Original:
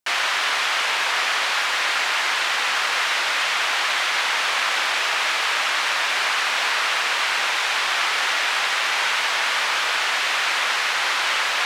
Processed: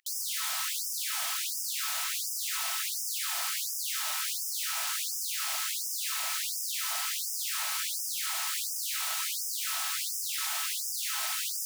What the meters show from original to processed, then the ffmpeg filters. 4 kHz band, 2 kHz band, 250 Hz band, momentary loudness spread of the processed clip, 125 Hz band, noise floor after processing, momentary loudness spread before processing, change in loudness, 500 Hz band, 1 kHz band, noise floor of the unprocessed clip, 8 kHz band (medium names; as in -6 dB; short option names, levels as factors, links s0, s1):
-12.0 dB, -19.5 dB, under -40 dB, 1 LU, no reading, -35 dBFS, 0 LU, -10.0 dB, -23.5 dB, -18.0 dB, -23 dBFS, -0.5 dB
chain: -filter_complex "[0:a]highshelf=f=2900:g=-6,asplit=2[s0][s1];[s1]alimiter=limit=0.0891:level=0:latency=1:release=170,volume=0.75[s2];[s0][s2]amix=inputs=2:normalize=0,aeval=exprs='(mod(11.9*val(0)+1,2)-1)/11.9':c=same,aeval=exprs='val(0)+0.0158*sin(2*PI*1300*n/s)':c=same,afftfilt=real='re*gte(b*sr/1024,600*pow(5000/600,0.5+0.5*sin(2*PI*1.4*pts/sr)))':imag='im*gte(b*sr/1024,600*pow(5000/600,0.5+0.5*sin(2*PI*1.4*pts/sr)))':win_size=1024:overlap=0.75,volume=0.501"